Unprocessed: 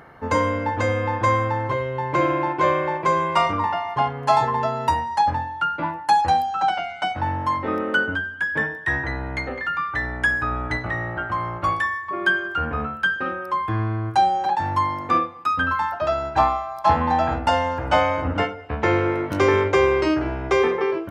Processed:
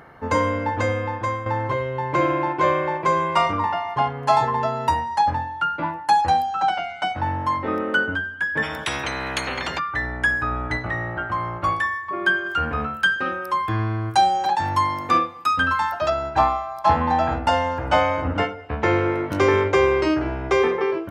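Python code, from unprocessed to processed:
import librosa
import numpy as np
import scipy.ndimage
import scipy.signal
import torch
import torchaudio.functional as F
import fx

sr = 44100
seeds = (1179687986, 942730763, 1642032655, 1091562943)

y = fx.spectral_comp(x, sr, ratio=10.0, at=(8.62, 9.78), fade=0.02)
y = fx.high_shelf(y, sr, hz=3400.0, db=11.0, at=(12.46, 16.1))
y = fx.edit(y, sr, fx.fade_out_to(start_s=0.81, length_s=0.65, floor_db=-10.0), tone=tone)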